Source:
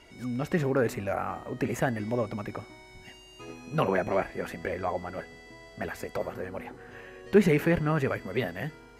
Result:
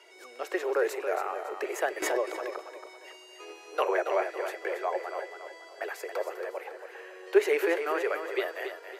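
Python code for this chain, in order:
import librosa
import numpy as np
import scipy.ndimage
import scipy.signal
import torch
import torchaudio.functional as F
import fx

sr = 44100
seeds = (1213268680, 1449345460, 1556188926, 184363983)

p1 = scipy.signal.sosfilt(scipy.signal.butter(12, 350.0, 'highpass', fs=sr, output='sos'), x)
p2 = p1 + fx.echo_feedback(p1, sr, ms=277, feedback_pct=37, wet_db=-8.5, dry=0)
y = fx.pre_swell(p2, sr, db_per_s=21.0, at=(2.02, 2.56))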